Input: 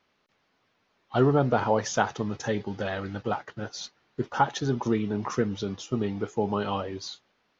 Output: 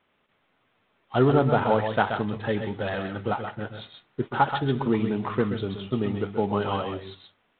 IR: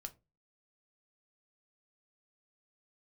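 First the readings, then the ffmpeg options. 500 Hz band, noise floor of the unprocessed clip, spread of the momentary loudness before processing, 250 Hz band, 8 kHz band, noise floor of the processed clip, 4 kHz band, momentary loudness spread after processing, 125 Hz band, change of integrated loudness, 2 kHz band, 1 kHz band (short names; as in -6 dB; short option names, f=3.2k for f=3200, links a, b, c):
+2.0 dB, -72 dBFS, 13 LU, +2.0 dB, n/a, -70 dBFS, 0.0 dB, 13 LU, +2.5 dB, +2.5 dB, +2.5 dB, +2.0 dB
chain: -filter_complex "[0:a]asplit=2[a][b];[1:a]atrim=start_sample=2205,highshelf=f=3.4k:g=8,adelay=129[c];[b][c]afir=irnorm=-1:irlink=0,volume=-3.5dB[d];[a][d]amix=inputs=2:normalize=0,volume=1.5dB" -ar 8000 -c:a adpcm_ima_wav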